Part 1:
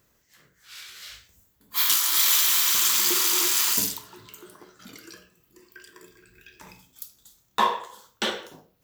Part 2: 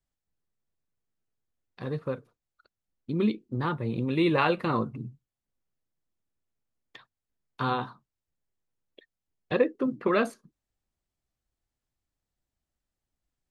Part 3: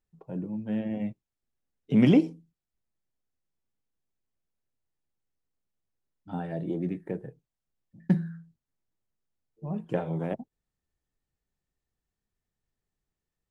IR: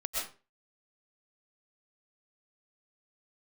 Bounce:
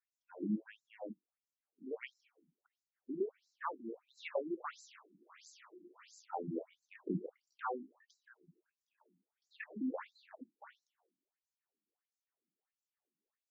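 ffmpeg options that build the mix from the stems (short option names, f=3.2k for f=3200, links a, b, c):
-filter_complex "[0:a]aemphasis=mode=reproduction:type=bsi,aeval=exprs='(tanh(8.91*val(0)+0.65)-tanh(0.65))/8.91':c=same,adelay=2400,volume=-17dB[a];[1:a]highpass=f=270:w=0.5412,highpass=f=270:w=1.3066,volume=-4.5dB,asplit=2[b][c];[2:a]acrossover=split=340[d][e];[e]acompressor=threshold=-28dB:ratio=6[f];[d][f]amix=inputs=2:normalize=0,volume=2.5dB[g];[c]apad=whole_len=595454[h];[g][h]sidechaincompress=threshold=-51dB:ratio=6:attack=16:release=134[i];[a][b][i]amix=inputs=3:normalize=0,equalizer=f=3.9k:t=o:w=0.8:g=-14,afftfilt=real='re*between(b*sr/1024,240*pow(5600/240,0.5+0.5*sin(2*PI*1.5*pts/sr))/1.41,240*pow(5600/240,0.5+0.5*sin(2*PI*1.5*pts/sr))*1.41)':imag='im*between(b*sr/1024,240*pow(5600/240,0.5+0.5*sin(2*PI*1.5*pts/sr))/1.41,240*pow(5600/240,0.5+0.5*sin(2*PI*1.5*pts/sr))*1.41)':win_size=1024:overlap=0.75"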